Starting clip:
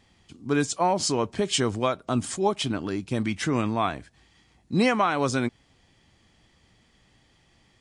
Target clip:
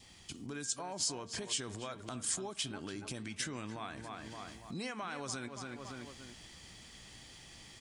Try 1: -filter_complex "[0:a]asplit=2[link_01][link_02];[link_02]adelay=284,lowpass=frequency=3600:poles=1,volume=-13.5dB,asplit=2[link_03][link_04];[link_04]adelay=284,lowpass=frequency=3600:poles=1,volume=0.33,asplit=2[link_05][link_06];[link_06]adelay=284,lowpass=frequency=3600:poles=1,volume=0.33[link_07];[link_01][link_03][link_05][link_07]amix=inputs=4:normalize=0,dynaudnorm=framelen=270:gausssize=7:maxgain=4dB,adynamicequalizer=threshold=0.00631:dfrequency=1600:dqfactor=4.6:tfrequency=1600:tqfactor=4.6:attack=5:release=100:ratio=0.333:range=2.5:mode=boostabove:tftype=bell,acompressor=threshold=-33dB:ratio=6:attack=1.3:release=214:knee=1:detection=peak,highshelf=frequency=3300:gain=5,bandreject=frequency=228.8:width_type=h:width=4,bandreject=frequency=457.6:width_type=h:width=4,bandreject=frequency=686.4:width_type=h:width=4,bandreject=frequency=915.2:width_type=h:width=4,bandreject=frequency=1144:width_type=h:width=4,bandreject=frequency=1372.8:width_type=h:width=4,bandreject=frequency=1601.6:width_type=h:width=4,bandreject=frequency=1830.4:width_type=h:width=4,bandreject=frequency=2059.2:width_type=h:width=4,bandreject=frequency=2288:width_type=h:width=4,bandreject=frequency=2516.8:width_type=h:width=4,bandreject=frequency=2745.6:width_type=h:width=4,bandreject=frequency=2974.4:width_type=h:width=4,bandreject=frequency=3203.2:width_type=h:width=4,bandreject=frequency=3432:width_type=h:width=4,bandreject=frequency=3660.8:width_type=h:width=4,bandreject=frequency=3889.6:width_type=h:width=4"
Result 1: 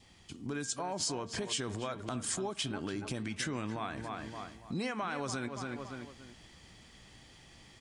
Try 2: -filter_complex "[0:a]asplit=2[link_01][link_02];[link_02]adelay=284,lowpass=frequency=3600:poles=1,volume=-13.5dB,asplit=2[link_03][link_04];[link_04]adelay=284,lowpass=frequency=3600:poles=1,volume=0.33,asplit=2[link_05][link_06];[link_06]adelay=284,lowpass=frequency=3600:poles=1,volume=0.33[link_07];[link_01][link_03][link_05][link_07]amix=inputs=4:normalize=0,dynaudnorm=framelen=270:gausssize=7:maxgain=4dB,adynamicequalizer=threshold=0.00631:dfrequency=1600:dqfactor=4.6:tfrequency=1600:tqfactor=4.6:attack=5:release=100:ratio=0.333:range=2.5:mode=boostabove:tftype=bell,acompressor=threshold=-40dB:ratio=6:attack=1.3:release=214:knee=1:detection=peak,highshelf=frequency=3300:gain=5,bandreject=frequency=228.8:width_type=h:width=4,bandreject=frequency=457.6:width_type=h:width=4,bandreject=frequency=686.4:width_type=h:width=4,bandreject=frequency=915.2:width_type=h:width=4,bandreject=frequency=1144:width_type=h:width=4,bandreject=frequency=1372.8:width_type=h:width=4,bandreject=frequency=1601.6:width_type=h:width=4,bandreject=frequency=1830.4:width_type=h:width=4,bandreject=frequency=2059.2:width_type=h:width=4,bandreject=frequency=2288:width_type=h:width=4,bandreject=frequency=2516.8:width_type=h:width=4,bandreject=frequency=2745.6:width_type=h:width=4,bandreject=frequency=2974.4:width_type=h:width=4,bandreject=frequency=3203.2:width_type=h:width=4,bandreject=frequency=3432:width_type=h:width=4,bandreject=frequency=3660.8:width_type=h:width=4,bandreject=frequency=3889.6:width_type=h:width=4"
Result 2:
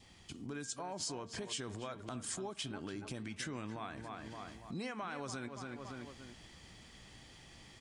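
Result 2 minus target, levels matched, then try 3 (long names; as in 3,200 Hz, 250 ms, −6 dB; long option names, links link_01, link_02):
8,000 Hz band −3.5 dB
-filter_complex "[0:a]asplit=2[link_01][link_02];[link_02]adelay=284,lowpass=frequency=3600:poles=1,volume=-13.5dB,asplit=2[link_03][link_04];[link_04]adelay=284,lowpass=frequency=3600:poles=1,volume=0.33,asplit=2[link_05][link_06];[link_06]adelay=284,lowpass=frequency=3600:poles=1,volume=0.33[link_07];[link_01][link_03][link_05][link_07]amix=inputs=4:normalize=0,dynaudnorm=framelen=270:gausssize=7:maxgain=4dB,adynamicequalizer=threshold=0.00631:dfrequency=1600:dqfactor=4.6:tfrequency=1600:tqfactor=4.6:attack=5:release=100:ratio=0.333:range=2.5:mode=boostabove:tftype=bell,acompressor=threshold=-40dB:ratio=6:attack=1.3:release=214:knee=1:detection=peak,highshelf=frequency=3300:gain=13,bandreject=frequency=228.8:width_type=h:width=4,bandreject=frequency=457.6:width_type=h:width=4,bandreject=frequency=686.4:width_type=h:width=4,bandreject=frequency=915.2:width_type=h:width=4,bandreject=frequency=1144:width_type=h:width=4,bandreject=frequency=1372.8:width_type=h:width=4,bandreject=frequency=1601.6:width_type=h:width=4,bandreject=frequency=1830.4:width_type=h:width=4,bandreject=frequency=2059.2:width_type=h:width=4,bandreject=frequency=2288:width_type=h:width=4,bandreject=frequency=2516.8:width_type=h:width=4,bandreject=frequency=2745.6:width_type=h:width=4,bandreject=frequency=2974.4:width_type=h:width=4,bandreject=frequency=3203.2:width_type=h:width=4,bandreject=frequency=3432:width_type=h:width=4,bandreject=frequency=3660.8:width_type=h:width=4,bandreject=frequency=3889.6:width_type=h:width=4"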